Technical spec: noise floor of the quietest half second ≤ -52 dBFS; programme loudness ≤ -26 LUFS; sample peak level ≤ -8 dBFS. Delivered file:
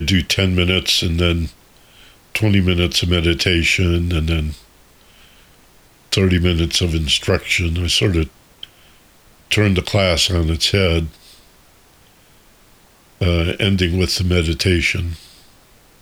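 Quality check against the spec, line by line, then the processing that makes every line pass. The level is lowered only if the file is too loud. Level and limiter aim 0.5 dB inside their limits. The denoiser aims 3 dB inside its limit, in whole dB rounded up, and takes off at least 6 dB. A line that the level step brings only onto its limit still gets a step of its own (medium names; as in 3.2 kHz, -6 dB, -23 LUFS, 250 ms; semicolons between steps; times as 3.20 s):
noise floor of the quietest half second -50 dBFS: fail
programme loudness -17.0 LUFS: fail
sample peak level -4.5 dBFS: fail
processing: trim -9.5 dB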